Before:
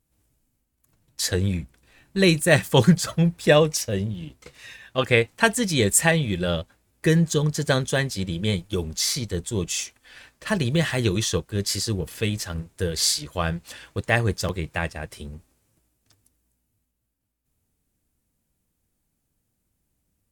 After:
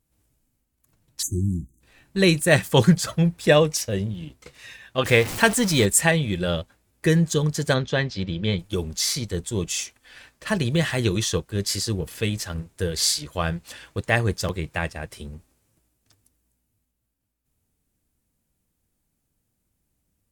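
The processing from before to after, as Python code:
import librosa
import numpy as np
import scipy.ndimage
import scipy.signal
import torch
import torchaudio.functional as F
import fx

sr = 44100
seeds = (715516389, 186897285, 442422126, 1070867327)

y = fx.spec_erase(x, sr, start_s=1.23, length_s=0.57, low_hz=380.0, high_hz=6000.0)
y = fx.zero_step(y, sr, step_db=-25.5, at=(5.05, 5.86))
y = fx.lowpass(y, sr, hz=4900.0, slope=24, at=(7.73, 8.58), fade=0.02)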